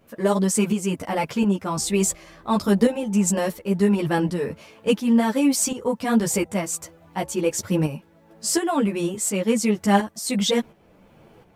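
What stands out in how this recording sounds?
a quantiser's noise floor 12-bit, dither none; tremolo saw up 1.4 Hz, depth 60%; a shimmering, thickened sound

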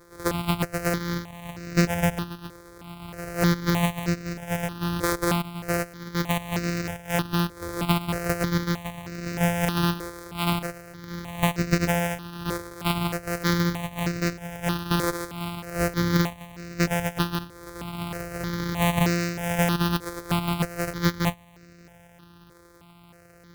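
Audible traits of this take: a buzz of ramps at a fixed pitch in blocks of 256 samples; notches that jump at a steady rate 3.2 Hz 760–3300 Hz

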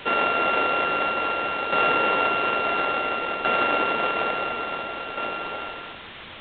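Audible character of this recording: a buzz of ramps at a fixed pitch in blocks of 32 samples; tremolo saw down 0.58 Hz, depth 60%; a quantiser's noise floor 6-bit, dither triangular; G.726

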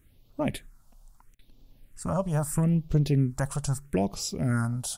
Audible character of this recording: phasing stages 4, 0.77 Hz, lowest notch 330–1700 Hz

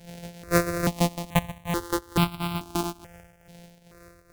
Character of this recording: a buzz of ramps at a fixed pitch in blocks of 256 samples; tremolo triangle 2.3 Hz, depth 80%; notches that jump at a steady rate 2.3 Hz 310–1800 Hz

